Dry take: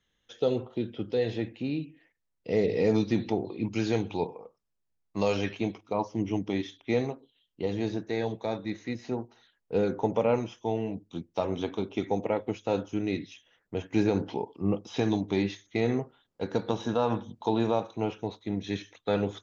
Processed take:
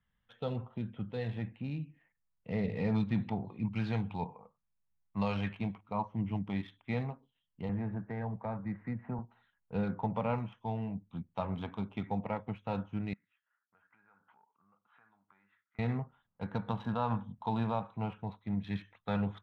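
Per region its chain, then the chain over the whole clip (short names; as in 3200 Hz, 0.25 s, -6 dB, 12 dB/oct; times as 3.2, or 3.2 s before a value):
7.69–9.19 LPF 1900 Hz 24 dB/oct + three-band squash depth 70%
13.13–15.79 compressor 3:1, threshold -40 dBFS + band-pass 1400 Hz, Q 4.9 + mismatched tape noise reduction decoder only
whole clip: Wiener smoothing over 9 samples; EQ curve 200 Hz 0 dB, 340 Hz -18 dB, 1000 Hz -1 dB, 4200 Hz -8 dB, 6500 Hz -21 dB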